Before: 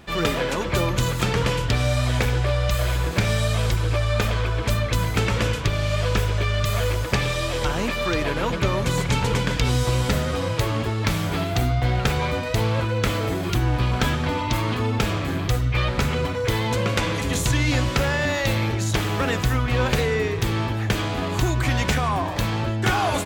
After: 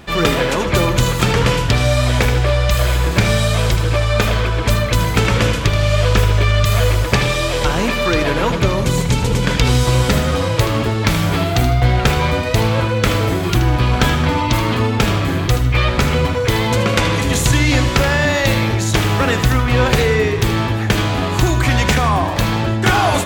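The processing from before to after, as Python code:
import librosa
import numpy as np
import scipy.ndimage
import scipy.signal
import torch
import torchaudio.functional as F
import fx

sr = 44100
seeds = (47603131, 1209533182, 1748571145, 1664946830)

y = fx.peak_eq(x, sr, hz=1500.0, db=fx.line((8.49, -1.5), (9.42, -9.0)), octaves=2.7, at=(8.49, 9.42), fade=0.02)
y = fx.echo_feedback(y, sr, ms=78, feedback_pct=34, wet_db=-11.0)
y = F.gain(torch.from_numpy(y), 7.0).numpy()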